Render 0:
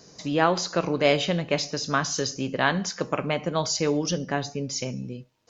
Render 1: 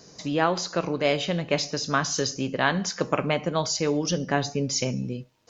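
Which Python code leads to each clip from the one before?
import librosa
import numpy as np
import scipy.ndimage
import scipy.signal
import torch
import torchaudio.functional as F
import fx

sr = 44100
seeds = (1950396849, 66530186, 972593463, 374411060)

y = fx.rider(x, sr, range_db=4, speed_s=0.5)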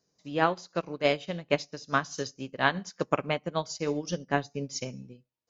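y = fx.upward_expand(x, sr, threshold_db=-37.0, expansion=2.5)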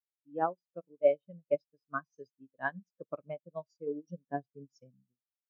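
y = fx.spectral_expand(x, sr, expansion=2.5)
y = F.gain(torch.from_numpy(y), -7.0).numpy()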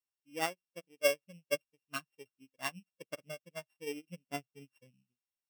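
y = np.r_[np.sort(x[:len(x) // 16 * 16].reshape(-1, 16), axis=1).ravel(), x[len(x) // 16 * 16:]]
y = F.gain(torch.from_numpy(y), -4.0).numpy()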